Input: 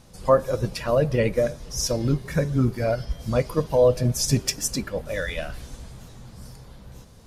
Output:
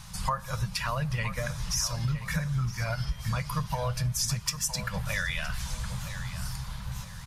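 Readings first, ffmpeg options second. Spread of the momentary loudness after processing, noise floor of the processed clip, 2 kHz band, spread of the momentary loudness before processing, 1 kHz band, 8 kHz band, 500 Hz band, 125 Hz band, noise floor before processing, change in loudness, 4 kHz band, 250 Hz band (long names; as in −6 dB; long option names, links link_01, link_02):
8 LU, −42 dBFS, +1.0 dB, 14 LU, −3.0 dB, −2.5 dB, −18.5 dB, −3.5 dB, −47 dBFS, −7.5 dB, −1.5 dB, −10.5 dB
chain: -filter_complex "[0:a]firequalizer=gain_entry='entry(190,0);entry(270,-29);entry(940,3)':delay=0.05:min_phase=1,acompressor=threshold=-34dB:ratio=6,asplit=2[link_01][link_02];[link_02]adelay=966,lowpass=frequency=3500:poles=1,volume=-11.5dB,asplit=2[link_03][link_04];[link_04]adelay=966,lowpass=frequency=3500:poles=1,volume=0.33,asplit=2[link_05][link_06];[link_06]adelay=966,lowpass=frequency=3500:poles=1,volume=0.33[link_07];[link_03][link_05][link_07]amix=inputs=3:normalize=0[link_08];[link_01][link_08]amix=inputs=2:normalize=0,volume=6.5dB"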